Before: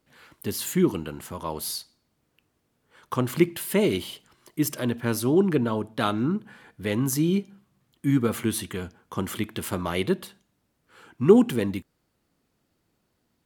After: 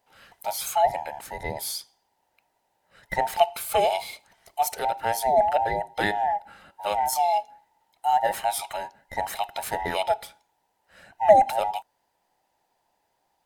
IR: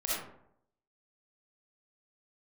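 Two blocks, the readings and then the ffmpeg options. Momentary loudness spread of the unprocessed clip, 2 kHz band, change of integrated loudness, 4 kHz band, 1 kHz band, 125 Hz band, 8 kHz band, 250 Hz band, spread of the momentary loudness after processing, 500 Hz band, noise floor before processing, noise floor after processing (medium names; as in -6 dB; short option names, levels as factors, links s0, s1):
13 LU, +2.5 dB, +0.5 dB, +0.5 dB, +14.0 dB, -16.0 dB, -0.5 dB, -19.0 dB, 13 LU, +1.0 dB, -74 dBFS, -74 dBFS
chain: -af "afftfilt=real='real(if(between(b,1,1008),(2*floor((b-1)/48)+1)*48-b,b),0)':imag='imag(if(between(b,1,1008),(2*floor((b-1)/48)+1)*48-b,b),0)*if(between(b,1,1008),-1,1)':win_size=2048:overlap=0.75"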